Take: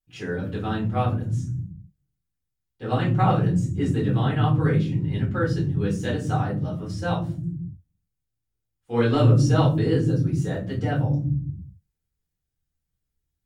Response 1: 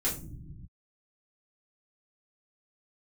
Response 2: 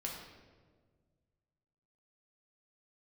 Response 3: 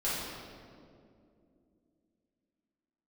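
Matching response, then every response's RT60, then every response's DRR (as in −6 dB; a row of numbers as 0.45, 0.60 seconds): 1; non-exponential decay, 1.6 s, 2.5 s; −7.5, −2.0, −10.0 decibels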